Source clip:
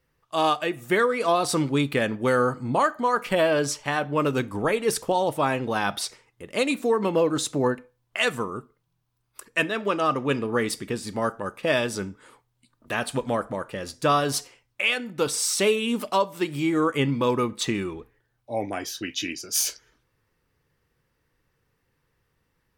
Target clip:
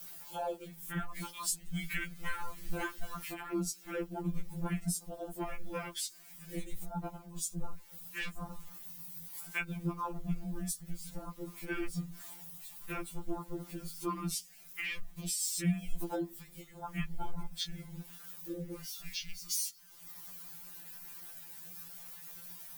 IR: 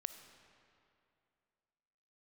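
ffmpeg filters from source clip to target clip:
-filter_complex "[0:a]aeval=exprs='val(0)+0.5*0.0266*sgn(val(0))':c=same,highpass=100,aemphasis=mode=production:type=75fm,afwtdn=0.0708,asettb=1/sr,asplit=3[a][b][c];[a]atrim=end=1.164[d];[b]atrim=start=1.16:end=3.32,asetpts=PTS-STARTPTS,afade=t=in:d=0.004:c=qsin,afade=t=out:st=2.156:d=0.004:c=qsin,highshelf=f=1.5k:t=q:w=1.5:g=10.5[e];[c]atrim=start=3.316[f];[d][e]acrossfade=d=0.004:c1=hsin:c2=qsin[g];[g][f]acrossfade=d=0.004:c1=qsin:c2=hsin,acrossover=split=250[h][i];[i]acompressor=threshold=-35dB:ratio=3[j];[h][j]amix=inputs=2:normalize=0,afreqshift=-250,afftfilt=real='re*2.83*eq(mod(b,8),0)':imag='im*2.83*eq(mod(b,8),0)':win_size=2048:overlap=0.75,volume=-2.5dB"

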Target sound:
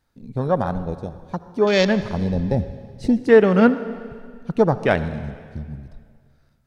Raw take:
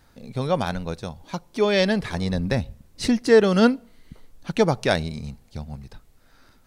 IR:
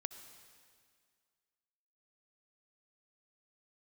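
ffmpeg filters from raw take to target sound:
-filter_complex "[0:a]afwtdn=0.0355,asplit=2[a][b];[1:a]atrim=start_sample=2205[c];[b][c]afir=irnorm=-1:irlink=0,volume=7.5dB[d];[a][d]amix=inputs=2:normalize=0,volume=-6dB"

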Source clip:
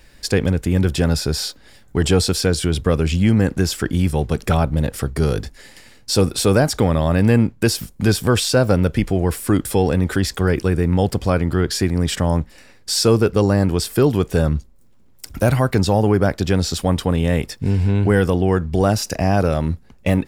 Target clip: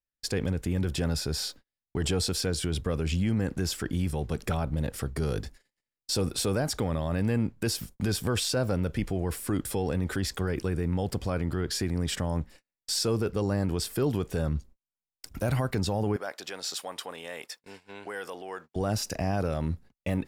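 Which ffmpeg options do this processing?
-filter_complex "[0:a]alimiter=limit=-11dB:level=0:latency=1:release=34,asettb=1/sr,asplit=3[a][b][c];[a]atrim=end=16.164[d];[b]atrim=start=16.16:end=18.76,asetpts=PTS-STARTPTS,afade=t=in:d=0.004:c=qsin,afade=t=out:st=2.596:d=0.004:c=qsin,highpass=670[e];[c]atrim=start=18.756[f];[d][e]acrossfade=d=0.004:c1=hsin:c2=qsin[g];[g][f]acrossfade=d=0.004:c1=qsin:c2=hsin,agate=range=-41dB:threshold=-37dB:ratio=16:detection=peak,volume=-8dB"

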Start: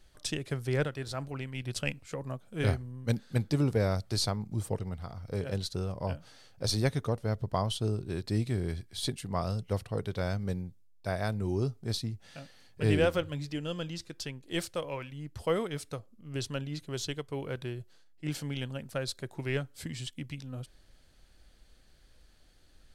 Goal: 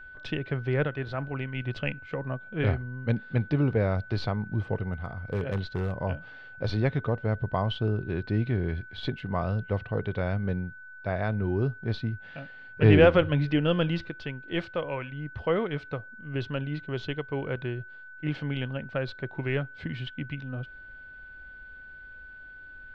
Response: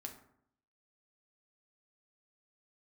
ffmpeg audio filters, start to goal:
-filter_complex "[0:a]lowpass=f=3k:w=0.5412,lowpass=f=3k:w=1.3066,asplit=2[a][b];[b]alimiter=level_in=2dB:limit=-24dB:level=0:latency=1:release=40,volume=-2dB,volume=-2.5dB[c];[a][c]amix=inputs=2:normalize=0,asplit=3[d][e][f];[d]afade=t=out:st=12.81:d=0.02[g];[e]acontrast=67,afade=t=in:st=12.81:d=0.02,afade=t=out:st=14.09:d=0.02[h];[f]afade=t=in:st=14.09:d=0.02[i];[g][h][i]amix=inputs=3:normalize=0,aeval=exprs='val(0)+0.00631*sin(2*PI*1500*n/s)':c=same,asettb=1/sr,asplit=3[j][k][l];[j]atrim=end=4.904[m];[k]atrim=start=4.9:end=6.01,asetpts=PTS-STARTPTS,afade=t=in:d=0.004:c=qsin,afade=t=out:st=1.106:d=0.004:c=qsin,aeval=exprs='0.0841*(abs(mod(val(0)/0.0841+3,4)-2)-1)':c=same[n];[l]atrim=start=6.006[o];[m][n]acrossfade=d=0.004:c1=hsin:c2=qsin[p];[p][o]acrossfade=d=0.004:c1=qsin:c2=hsin"

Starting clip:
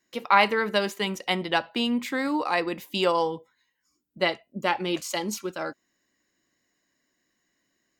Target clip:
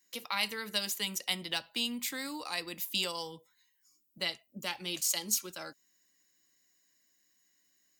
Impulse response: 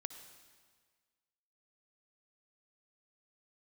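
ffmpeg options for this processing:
-filter_complex "[0:a]bandreject=f=390:w=12,acrossover=split=190|3000[a][b][c];[b]acompressor=threshold=-38dB:ratio=2[d];[a][d][c]amix=inputs=3:normalize=0,crystalizer=i=5:c=0,volume=-9dB"

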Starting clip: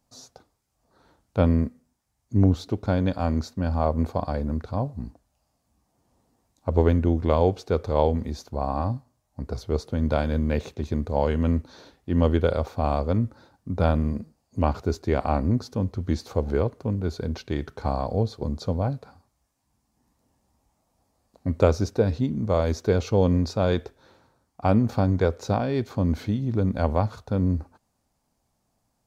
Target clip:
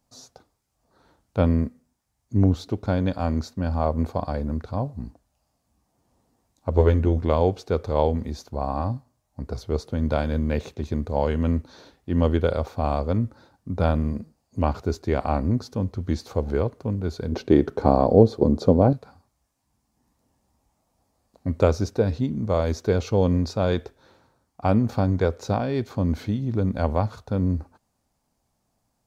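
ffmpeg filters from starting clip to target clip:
-filter_complex "[0:a]asettb=1/sr,asplit=3[a][b][c];[a]atrim=end=6.754[d];[b]atrim=start=6.75:end=7.19,asetpts=PTS-STARTPTS,afade=t=in:d=0.004:c=qsin,afade=t=out:st=0.436:d=0.004:c=qsin,asplit=2[e][f];[f]adelay=14,volume=-5dB[g];[e][g]amix=inputs=2:normalize=0,atrim=end_sample=19404[h];[c]atrim=start=7.186[i];[d][h]acrossfade=d=0.004:c1=hsin:c2=qsin[j];[j][i]acrossfade=d=0.004:c1=qsin:c2=hsin,asettb=1/sr,asplit=3[k][l][m];[k]atrim=end=17.324[n];[l]atrim=start=17.32:end=18.93,asetpts=PTS-STARTPTS,afade=t=in:d=0.004:c=qsin,afade=t=out:st=1.606:d=0.004:c=qsin,equalizer=f=350:w=0.52:g=14[o];[m]atrim=start=18.926[p];[n][o]acrossfade=d=0.004:c1=hsin:c2=qsin[q];[q][p]acrossfade=d=0.004:c1=qsin:c2=hsin"

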